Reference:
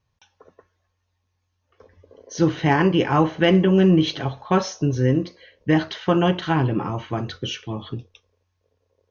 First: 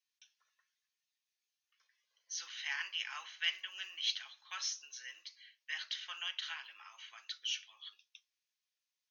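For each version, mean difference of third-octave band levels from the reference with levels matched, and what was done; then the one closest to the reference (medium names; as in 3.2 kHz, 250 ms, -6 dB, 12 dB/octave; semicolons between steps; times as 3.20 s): 16.0 dB: Bessel high-pass 2.9 kHz, order 4; trim -4 dB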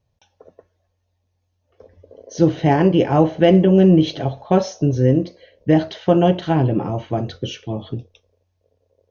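2.5 dB: FFT filter 410 Hz 0 dB, 640 Hz +5 dB, 1.1 kHz -10 dB, 3.7 kHz -5 dB; trim +3.5 dB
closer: second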